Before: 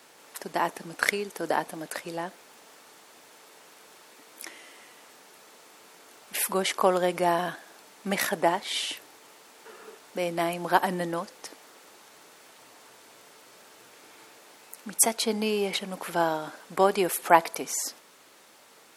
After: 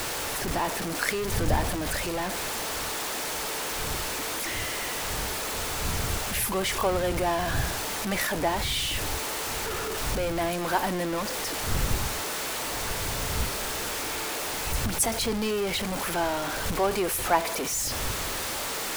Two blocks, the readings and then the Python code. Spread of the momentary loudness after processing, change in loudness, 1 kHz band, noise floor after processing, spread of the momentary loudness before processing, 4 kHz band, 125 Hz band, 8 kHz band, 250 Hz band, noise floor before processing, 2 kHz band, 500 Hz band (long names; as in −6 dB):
4 LU, −0.5 dB, −1.0 dB, −32 dBFS, 19 LU, +5.5 dB, +9.5 dB, +4.0 dB, +1.5 dB, −55 dBFS, +2.5 dB, −0.5 dB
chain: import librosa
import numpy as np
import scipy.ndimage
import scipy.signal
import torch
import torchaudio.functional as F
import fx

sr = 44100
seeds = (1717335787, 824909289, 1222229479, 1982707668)

y = x + 0.5 * 10.0 ** (-19.5 / 20.0) * np.sign(x)
y = fx.dmg_wind(y, sr, seeds[0], corner_hz=90.0, level_db=-29.0)
y = F.gain(torch.from_numpy(y), -6.5).numpy()